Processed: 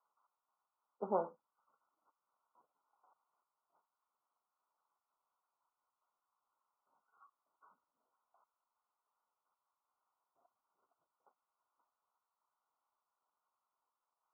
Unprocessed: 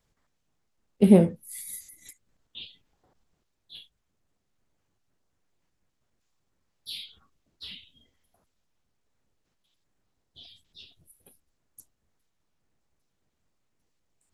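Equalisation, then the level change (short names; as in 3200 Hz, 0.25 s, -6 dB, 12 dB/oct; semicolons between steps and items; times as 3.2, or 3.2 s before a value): resonant high-pass 1000 Hz, resonance Q 3.4; brick-wall FIR low-pass 1500 Hz; air absorption 420 m; -3.5 dB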